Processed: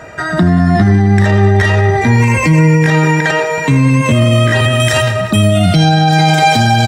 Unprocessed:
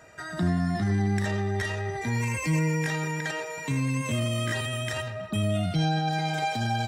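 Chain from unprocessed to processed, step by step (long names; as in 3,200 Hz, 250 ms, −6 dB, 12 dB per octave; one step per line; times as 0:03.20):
high-shelf EQ 4,000 Hz −11 dB, from 0:04.80 +2 dB
repeating echo 191 ms, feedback 49%, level −17 dB
boost into a limiter +21.5 dB
level −1 dB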